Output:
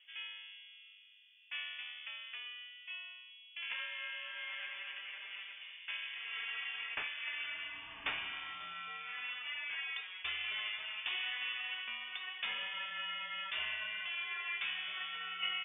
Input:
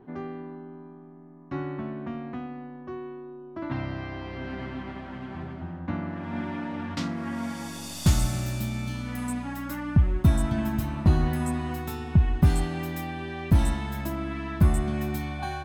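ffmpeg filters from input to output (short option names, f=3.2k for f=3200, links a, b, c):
-filter_complex "[0:a]adynamicsmooth=sensitivity=1:basefreq=1.9k,highpass=1.2k,asettb=1/sr,asplit=3[a][b][c];[a]atrim=end=2.434[d];[b]atrim=start=2.43:end=3.3,asetpts=PTS-STARTPTS,afade=t=in:d=0.004:c=qsin,afade=t=out:st=0.866:d=0.004:c=qsin,asplit=2[e][f];[f]adelay=26,volume=-6dB[g];[e][g]amix=inputs=2:normalize=0,atrim=end_sample=38367[h];[c]atrim=start=3.296[i];[d][h]acrossfade=d=0.004:c1=hsin:c2=qsin[j];[j][i]acrossfade=d=0.004:c1=qsin:c2=hsin,lowpass=f=3.1k:t=q:w=0.5098,lowpass=f=3.1k:t=q:w=0.6013,lowpass=f=3.1k:t=q:w=0.9,lowpass=f=3.1k:t=q:w=2.563,afreqshift=-3700,volume=5dB"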